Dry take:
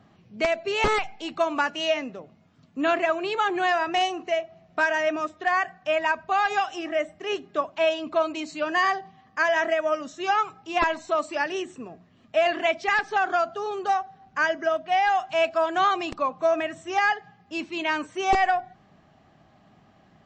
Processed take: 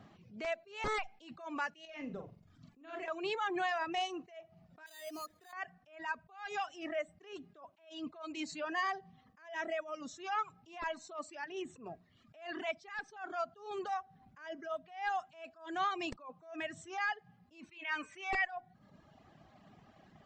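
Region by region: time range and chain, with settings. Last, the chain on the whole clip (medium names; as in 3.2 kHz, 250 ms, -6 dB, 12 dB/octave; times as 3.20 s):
1.85–3.08 s: compression 3:1, threshold -41 dBFS + bass shelf 160 Hz +8.5 dB + flutter echo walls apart 7.4 m, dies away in 0.45 s
4.86–5.53 s: bass shelf 120 Hz -9 dB + compression 3:1, threshold -43 dBFS + careless resampling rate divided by 8×, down none, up hold
11.44–11.86 s: tone controls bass -1 dB, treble -6 dB + compression, threshold -30 dBFS
17.71–18.45 s: peaking EQ 2.3 kHz +14.5 dB 1.2 oct + band-stop 4 kHz, Q 26 + de-hum 118.5 Hz, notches 23
whole clip: compression 2.5:1, threshold -34 dBFS; reverb removal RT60 1 s; attacks held to a fixed rise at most 130 dB/s; trim -1 dB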